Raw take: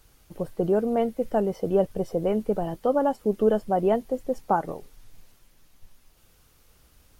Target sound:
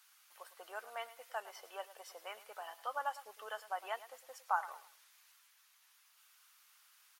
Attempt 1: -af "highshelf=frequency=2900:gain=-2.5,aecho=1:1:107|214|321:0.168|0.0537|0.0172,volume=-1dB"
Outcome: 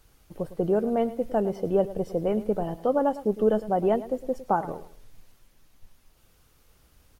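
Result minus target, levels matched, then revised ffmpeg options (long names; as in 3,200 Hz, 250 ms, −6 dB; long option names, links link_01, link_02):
1,000 Hz band −7.0 dB
-af "highpass=frequency=1100:width=0.5412,highpass=frequency=1100:width=1.3066,highshelf=frequency=2900:gain=-2.5,aecho=1:1:107|214|321:0.168|0.0537|0.0172,volume=-1dB"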